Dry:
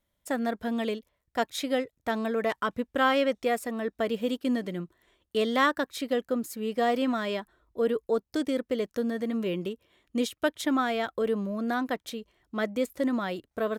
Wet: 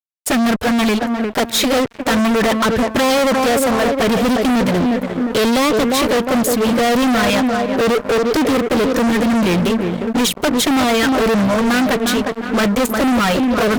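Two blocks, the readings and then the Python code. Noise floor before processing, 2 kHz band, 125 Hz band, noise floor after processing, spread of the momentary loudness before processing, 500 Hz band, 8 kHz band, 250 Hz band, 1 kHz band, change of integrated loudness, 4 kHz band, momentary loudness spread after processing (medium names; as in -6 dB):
-80 dBFS, +13.5 dB, +19.0 dB, -30 dBFS, 9 LU, +12.0 dB, +21.0 dB, +15.0 dB, +13.0 dB, +13.5 dB, +16.5 dB, 3 LU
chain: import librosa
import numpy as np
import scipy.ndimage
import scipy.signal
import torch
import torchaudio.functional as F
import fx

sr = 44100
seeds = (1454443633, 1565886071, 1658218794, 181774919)

y = fx.env_flanger(x, sr, rest_ms=10.1, full_db=-22.5)
y = fx.echo_bbd(y, sr, ms=355, stages=4096, feedback_pct=46, wet_db=-11.5)
y = fx.fuzz(y, sr, gain_db=43.0, gate_db=-52.0)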